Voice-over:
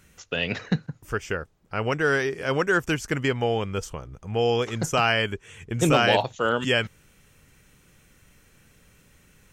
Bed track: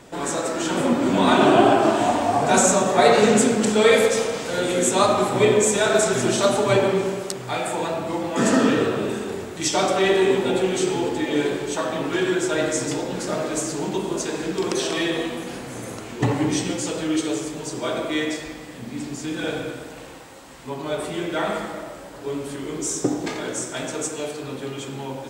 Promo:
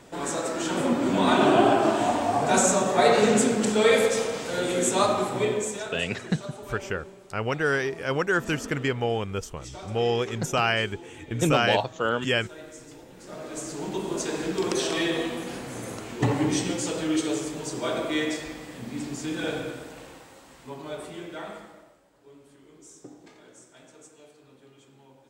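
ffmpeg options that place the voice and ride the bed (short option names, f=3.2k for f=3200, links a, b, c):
-filter_complex "[0:a]adelay=5600,volume=-2dB[a];[1:a]volume=14.5dB,afade=t=out:st=5:d=1:silence=0.141254,afade=t=in:st=13.17:d=1.16:silence=0.11885,afade=t=out:st=19.33:d=2.68:silence=0.0891251[b];[a][b]amix=inputs=2:normalize=0"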